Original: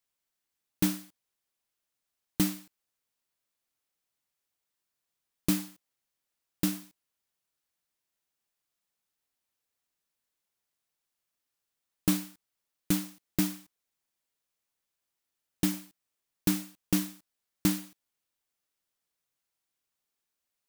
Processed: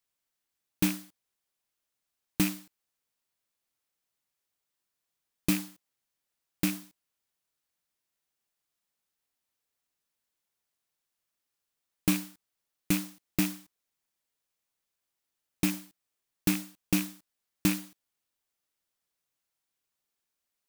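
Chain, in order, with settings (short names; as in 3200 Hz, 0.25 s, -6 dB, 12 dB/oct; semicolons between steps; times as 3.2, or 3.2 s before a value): rattling part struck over -33 dBFS, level -24 dBFS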